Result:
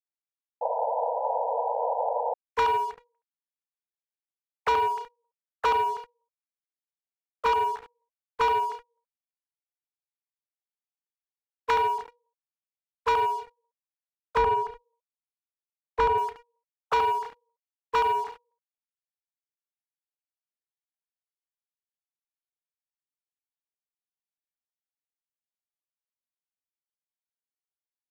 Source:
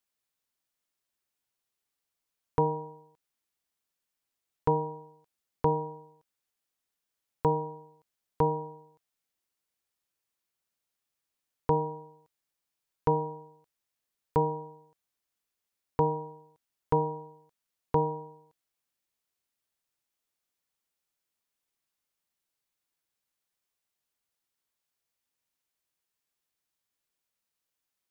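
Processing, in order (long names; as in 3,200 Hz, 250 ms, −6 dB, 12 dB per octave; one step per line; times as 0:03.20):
three sine waves on the formant tracks
ambience of single reflections 33 ms −14 dB, 72 ms −7.5 dB
leveller curve on the samples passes 3
0:00.61–0:02.34: sound drawn into the spectrogram noise 450–1,000 Hz −24 dBFS
0:14.37–0:16.18: spectral tilt −2.5 dB per octave
level −3.5 dB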